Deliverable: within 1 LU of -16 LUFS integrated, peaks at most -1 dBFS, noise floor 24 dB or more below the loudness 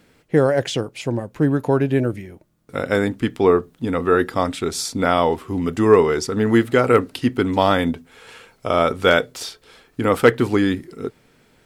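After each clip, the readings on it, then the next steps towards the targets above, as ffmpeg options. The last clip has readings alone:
loudness -19.5 LUFS; peak level -2.0 dBFS; loudness target -16.0 LUFS
-> -af "volume=1.5,alimiter=limit=0.891:level=0:latency=1"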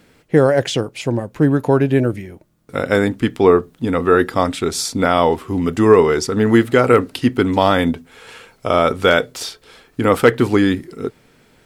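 loudness -16.5 LUFS; peak level -1.0 dBFS; noise floor -54 dBFS

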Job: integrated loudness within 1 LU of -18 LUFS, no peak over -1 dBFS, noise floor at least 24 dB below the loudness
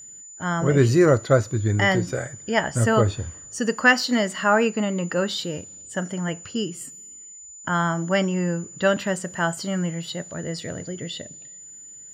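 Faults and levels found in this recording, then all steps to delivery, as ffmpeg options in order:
steady tone 7 kHz; tone level -40 dBFS; loudness -23.0 LUFS; peak level -3.5 dBFS; loudness target -18.0 LUFS
-> -af "bandreject=f=7000:w=30"
-af "volume=1.78,alimiter=limit=0.891:level=0:latency=1"

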